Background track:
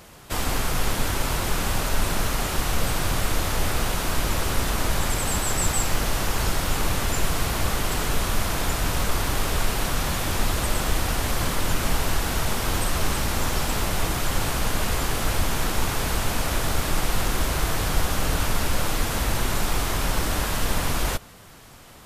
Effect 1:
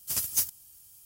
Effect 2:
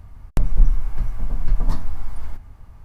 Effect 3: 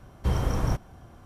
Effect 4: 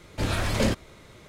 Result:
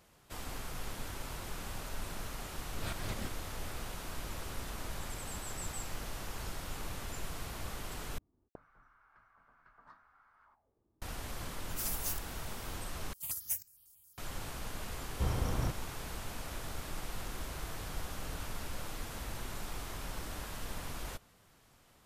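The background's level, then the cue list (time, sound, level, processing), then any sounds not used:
background track -17.5 dB
2.54 s: add 4 -12 dB + slow attack 171 ms
8.18 s: replace with 2 -9.5 dB + auto-wah 280–1400 Hz, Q 4.9, up, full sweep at -16 dBFS
11.69 s: add 1 -5 dB + hard clipper -29 dBFS
13.13 s: replace with 1 -7.5 dB + stepped phaser 11 Hz 550–3300 Hz
14.95 s: add 3 -8 dB

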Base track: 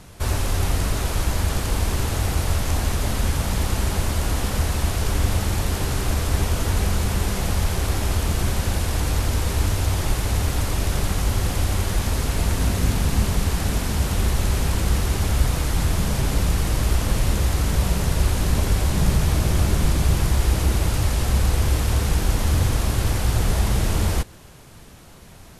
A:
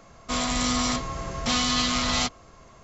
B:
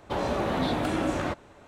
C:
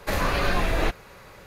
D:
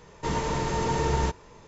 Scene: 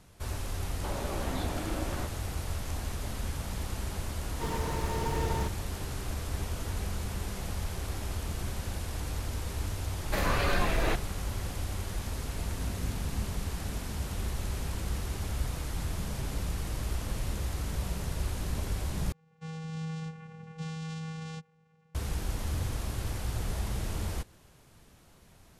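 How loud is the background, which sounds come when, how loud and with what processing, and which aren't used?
base track -13 dB
0.73 s: add B -9.5 dB
4.17 s: add D -7 dB + median filter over 5 samples
10.05 s: add C -4.5 dB
19.12 s: replace with A -12 dB + vocoder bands 4, square 160 Hz

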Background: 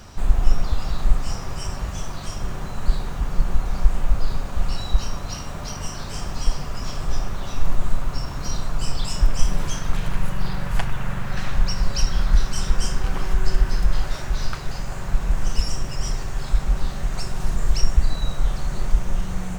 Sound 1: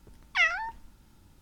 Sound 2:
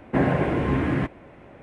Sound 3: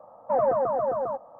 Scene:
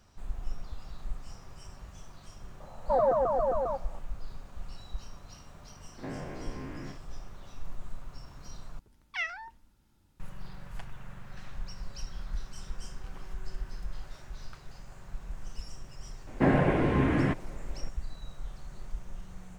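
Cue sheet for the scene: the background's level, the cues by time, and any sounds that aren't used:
background -19 dB
2.60 s: add 3 -2 dB
5.88 s: add 2 -17 dB + spectrogram pixelated in time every 50 ms
8.79 s: replace with 1 -9.5 dB
16.27 s: add 2 -2.5 dB

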